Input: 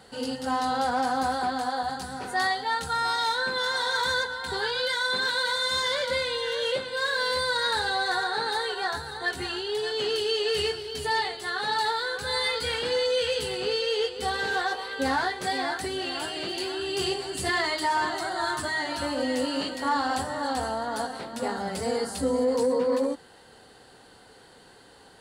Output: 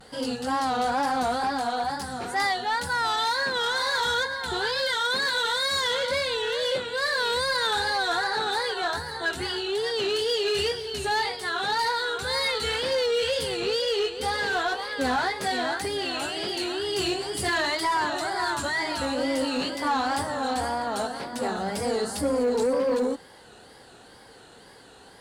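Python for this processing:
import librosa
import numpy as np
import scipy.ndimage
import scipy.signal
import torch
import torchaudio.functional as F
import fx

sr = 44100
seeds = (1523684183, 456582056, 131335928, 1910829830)

y = fx.wow_flutter(x, sr, seeds[0], rate_hz=2.1, depth_cents=120.0)
y = fx.quant_float(y, sr, bits=6)
y = fx.cheby_harmonics(y, sr, harmonics=(5,), levels_db=(-23,), full_scale_db=-16.0)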